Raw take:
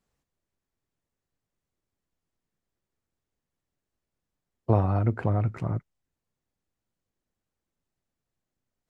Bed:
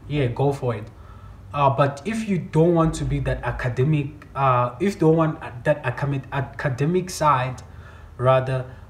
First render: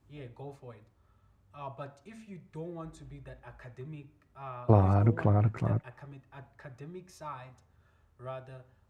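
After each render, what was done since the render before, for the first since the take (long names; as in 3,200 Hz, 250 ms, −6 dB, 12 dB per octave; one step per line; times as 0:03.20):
mix in bed −24 dB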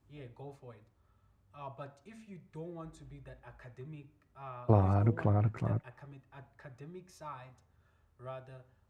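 level −3.5 dB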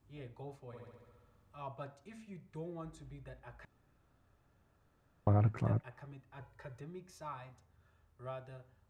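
0:00.66–0:01.61: flutter between parallel walls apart 11.6 metres, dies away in 1.4 s
0:03.65–0:05.27: fill with room tone
0:06.40–0:06.81: comb filter 2.1 ms, depth 87%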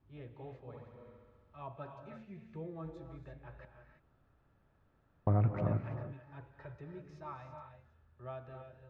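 high-frequency loss of the air 230 metres
reverb whose tail is shaped and stops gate 360 ms rising, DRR 5.5 dB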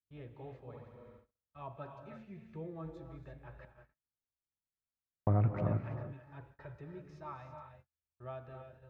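noise gate −58 dBFS, range −36 dB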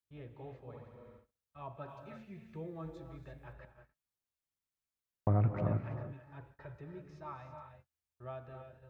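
0:01.88–0:03.53: high-shelf EQ 2,900 Hz +6.5 dB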